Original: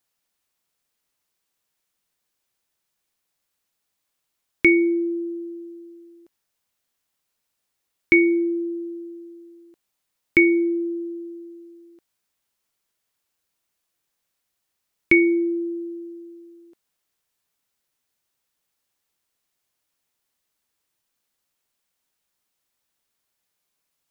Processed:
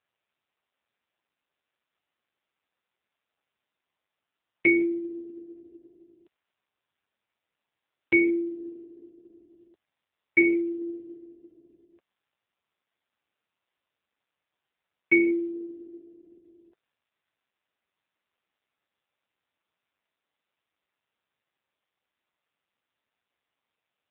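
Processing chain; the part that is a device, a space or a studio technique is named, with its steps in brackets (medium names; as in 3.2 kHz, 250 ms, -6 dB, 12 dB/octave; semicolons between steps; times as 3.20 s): telephone (band-pass 370–3000 Hz; AMR-NB 5.9 kbps 8 kHz)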